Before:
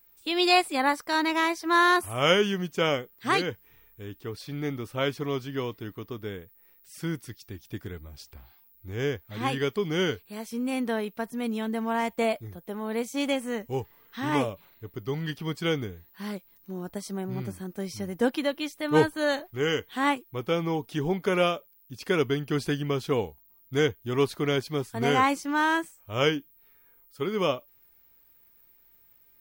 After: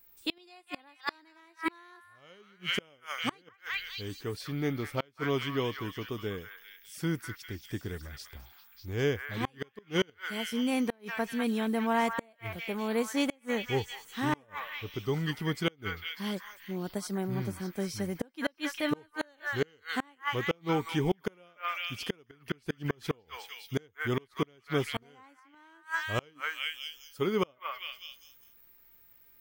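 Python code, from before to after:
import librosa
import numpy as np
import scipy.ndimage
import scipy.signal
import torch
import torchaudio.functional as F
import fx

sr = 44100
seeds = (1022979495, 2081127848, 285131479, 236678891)

y = fx.echo_stepped(x, sr, ms=199, hz=1500.0, octaves=0.7, feedback_pct=70, wet_db=-1.5)
y = fx.gate_flip(y, sr, shuts_db=-17.0, range_db=-34)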